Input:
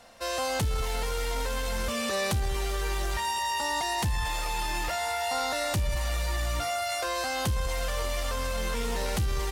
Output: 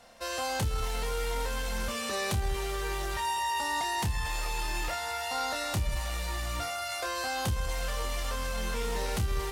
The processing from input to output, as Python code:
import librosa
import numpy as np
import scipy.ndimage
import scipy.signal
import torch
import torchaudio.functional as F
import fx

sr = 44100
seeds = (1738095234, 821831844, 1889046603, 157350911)

y = fx.doubler(x, sr, ms=28.0, db=-7.5)
y = y * 10.0 ** (-3.0 / 20.0)